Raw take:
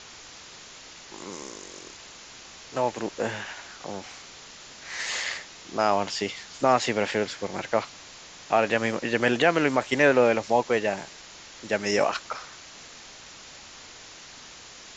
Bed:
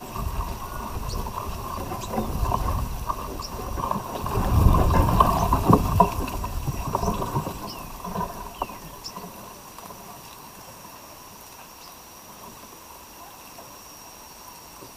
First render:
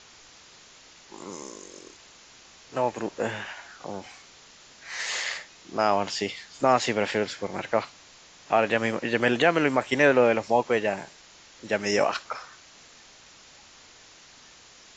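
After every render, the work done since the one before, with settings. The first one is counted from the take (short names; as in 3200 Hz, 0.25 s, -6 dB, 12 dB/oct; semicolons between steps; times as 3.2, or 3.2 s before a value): noise print and reduce 6 dB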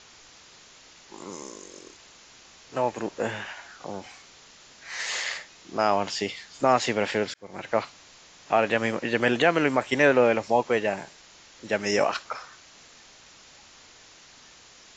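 7.34–7.77 fade in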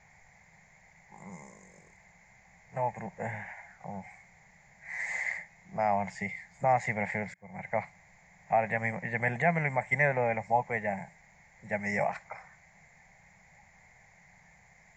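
EQ curve 110 Hz 0 dB, 180 Hz +5 dB, 290 Hz -25 dB, 800 Hz 0 dB, 1300 Hz -19 dB, 2100 Hz +4 dB, 2900 Hz -28 dB, 5700 Hz -22 dB, 9000 Hz -3 dB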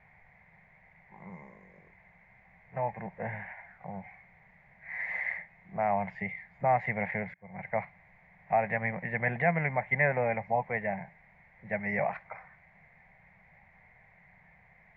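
LPF 2900 Hz 24 dB/oct; notch 840 Hz, Q 21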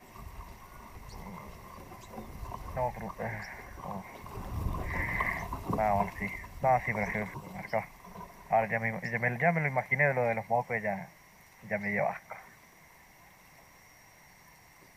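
add bed -17 dB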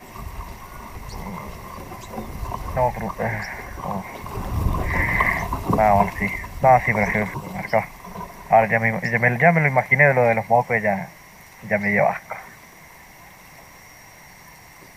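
gain +12 dB; limiter -3 dBFS, peak gain reduction 1 dB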